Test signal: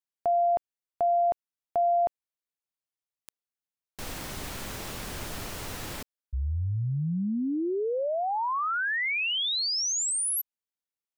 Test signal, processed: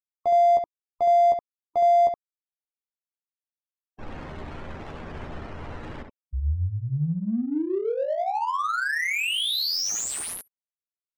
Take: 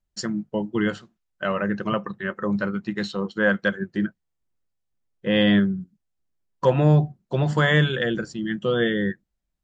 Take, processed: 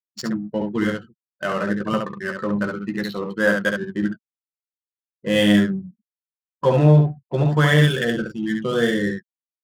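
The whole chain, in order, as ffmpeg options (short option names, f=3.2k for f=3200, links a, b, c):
-af "afftfilt=real='re*gte(hypot(re,im),0.0126)':imag='im*gte(hypot(re,im),0.0126)':win_size=1024:overlap=0.75,aecho=1:1:13|68:0.501|0.631,adynamicsmooth=sensitivity=7:basefreq=1.4k"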